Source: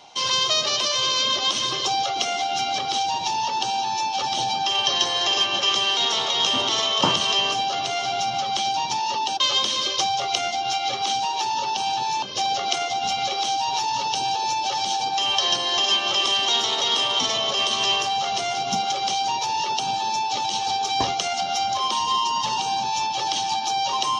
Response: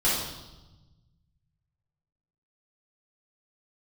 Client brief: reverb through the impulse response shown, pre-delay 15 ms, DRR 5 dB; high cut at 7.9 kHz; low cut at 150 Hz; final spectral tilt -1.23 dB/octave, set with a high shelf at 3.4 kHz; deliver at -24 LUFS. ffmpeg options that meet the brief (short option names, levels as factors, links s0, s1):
-filter_complex "[0:a]highpass=150,lowpass=7900,highshelf=f=3400:g=-8,asplit=2[s0][s1];[1:a]atrim=start_sample=2205,adelay=15[s2];[s1][s2]afir=irnorm=-1:irlink=0,volume=0.133[s3];[s0][s3]amix=inputs=2:normalize=0,volume=0.891"